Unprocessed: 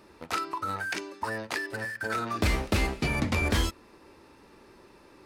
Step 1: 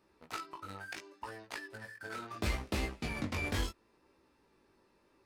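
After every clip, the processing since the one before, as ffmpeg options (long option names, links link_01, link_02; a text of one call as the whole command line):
ffmpeg -i in.wav -af "aeval=exprs='0.188*(cos(1*acos(clip(val(0)/0.188,-1,1)))-cos(1*PI/2))+0.015*(cos(3*acos(clip(val(0)/0.188,-1,1)))-cos(3*PI/2))+0.00944*(cos(7*acos(clip(val(0)/0.188,-1,1)))-cos(7*PI/2))':channel_layout=same,flanger=delay=15.5:depth=5.4:speed=0.72,volume=-4.5dB" out.wav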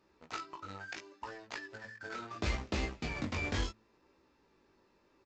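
ffmpeg -i in.wav -af "aresample=16000,acrusher=bits=6:mode=log:mix=0:aa=0.000001,aresample=44100,bandreject=frequency=109.6:width_type=h:width=4,bandreject=frequency=219.2:width_type=h:width=4" out.wav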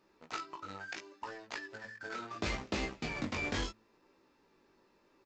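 ffmpeg -i in.wav -af "equalizer=frequency=70:width_type=o:width=0.93:gain=-11,volume=1dB" out.wav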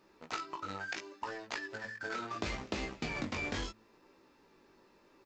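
ffmpeg -i in.wav -af "acompressor=threshold=-38dB:ratio=6,volume=4.5dB" out.wav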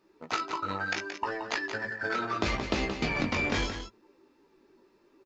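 ffmpeg -i in.wav -af "afftdn=noise_reduction=12:noise_floor=-53,aecho=1:1:175:0.376,volume=8dB" out.wav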